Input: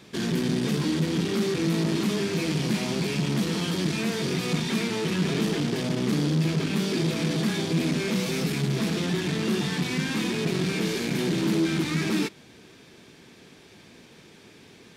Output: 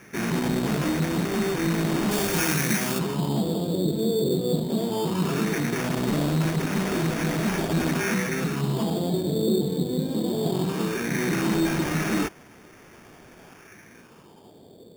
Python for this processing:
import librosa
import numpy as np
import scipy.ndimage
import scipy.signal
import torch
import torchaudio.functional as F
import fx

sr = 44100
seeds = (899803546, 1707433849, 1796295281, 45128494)

y = fx.filter_lfo_lowpass(x, sr, shape='sine', hz=0.18, low_hz=470.0, high_hz=7000.0, q=2.9)
y = fx.sample_hold(y, sr, seeds[0], rate_hz=4000.0, jitter_pct=0)
y = fx.high_shelf(y, sr, hz=4000.0, db=11.0, at=(2.11, 2.99))